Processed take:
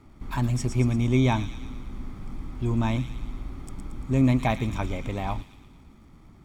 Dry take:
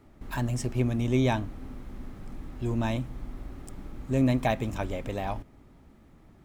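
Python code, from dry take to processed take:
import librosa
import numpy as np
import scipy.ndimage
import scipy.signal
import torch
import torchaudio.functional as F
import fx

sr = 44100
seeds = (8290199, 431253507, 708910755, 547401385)

p1 = fx.dmg_crackle(x, sr, seeds[0], per_s=470.0, level_db=-60.0)
p2 = fx.high_shelf(p1, sr, hz=11000.0, db=-10.0)
p3 = p2 + 0.41 * np.pad(p2, (int(0.9 * sr / 1000.0), 0))[:len(p2)]
p4 = p3 + fx.echo_wet_highpass(p3, sr, ms=114, feedback_pct=57, hz=3000.0, wet_db=-6.0, dry=0)
y = p4 * 10.0 ** (2.0 / 20.0)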